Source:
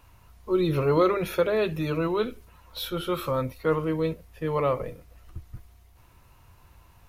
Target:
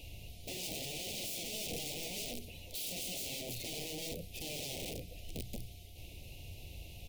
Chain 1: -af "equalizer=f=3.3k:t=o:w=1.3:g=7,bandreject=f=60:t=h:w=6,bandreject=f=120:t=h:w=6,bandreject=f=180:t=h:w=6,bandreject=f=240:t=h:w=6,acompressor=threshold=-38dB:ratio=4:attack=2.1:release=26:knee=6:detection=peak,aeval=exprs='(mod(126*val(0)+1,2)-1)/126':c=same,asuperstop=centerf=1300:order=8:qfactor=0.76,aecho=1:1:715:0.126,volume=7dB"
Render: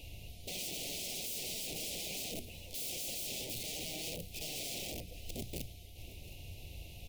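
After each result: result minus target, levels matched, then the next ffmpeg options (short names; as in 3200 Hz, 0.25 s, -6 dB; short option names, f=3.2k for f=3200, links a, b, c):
echo-to-direct +8.5 dB; compressor: peak gain reduction -5 dB
-af "equalizer=f=3.3k:t=o:w=1.3:g=7,bandreject=f=60:t=h:w=6,bandreject=f=120:t=h:w=6,bandreject=f=180:t=h:w=6,bandreject=f=240:t=h:w=6,acompressor=threshold=-38dB:ratio=4:attack=2.1:release=26:knee=6:detection=peak,aeval=exprs='(mod(126*val(0)+1,2)-1)/126':c=same,asuperstop=centerf=1300:order=8:qfactor=0.76,aecho=1:1:715:0.0473,volume=7dB"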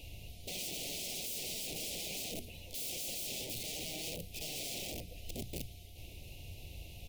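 compressor: peak gain reduction -5 dB
-af "equalizer=f=3.3k:t=o:w=1.3:g=7,bandreject=f=60:t=h:w=6,bandreject=f=120:t=h:w=6,bandreject=f=180:t=h:w=6,bandreject=f=240:t=h:w=6,acompressor=threshold=-44.5dB:ratio=4:attack=2.1:release=26:knee=6:detection=peak,aeval=exprs='(mod(126*val(0)+1,2)-1)/126':c=same,asuperstop=centerf=1300:order=8:qfactor=0.76,aecho=1:1:715:0.0473,volume=7dB"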